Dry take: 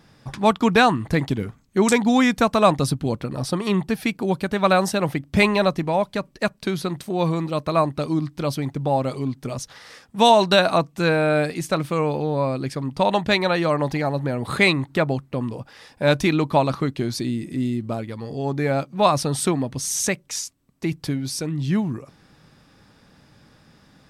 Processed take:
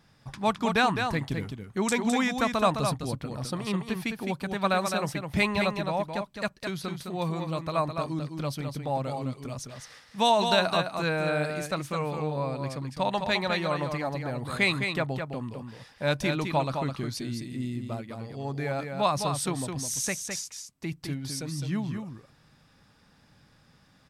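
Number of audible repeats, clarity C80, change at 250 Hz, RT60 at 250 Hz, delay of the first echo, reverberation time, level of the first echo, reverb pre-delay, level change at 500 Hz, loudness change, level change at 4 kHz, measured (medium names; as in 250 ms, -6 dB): 1, no reverb, -8.5 dB, no reverb, 210 ms, no reverb, -6.0 dB, no reverb, -8.5 dB, -7.5 dB, -5.5 dB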